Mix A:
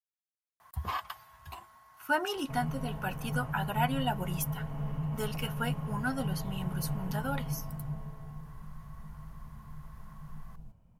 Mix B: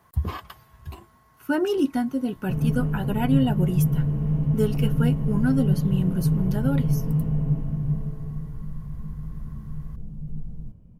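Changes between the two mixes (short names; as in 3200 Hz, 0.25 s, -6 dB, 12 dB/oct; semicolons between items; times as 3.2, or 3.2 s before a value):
speech: entry -0.60 s; master: add resonant low shelf 550 Hz +12 dB, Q 1.5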